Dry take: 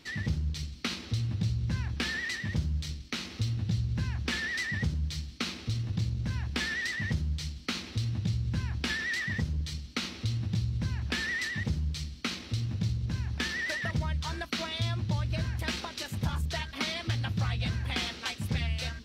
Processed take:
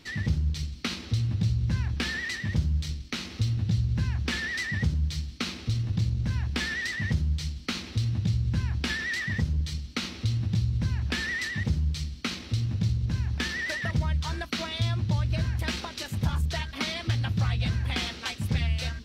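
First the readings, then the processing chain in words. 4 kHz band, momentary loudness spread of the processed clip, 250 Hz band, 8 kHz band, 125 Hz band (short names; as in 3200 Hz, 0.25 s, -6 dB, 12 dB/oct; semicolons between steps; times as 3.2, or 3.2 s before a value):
+1.5 dB, 5 LU, +3.0 dB, +1.5 dB, +4.5 dB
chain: low shelf 140 Hz +4.5 dB; gain +1.5 dB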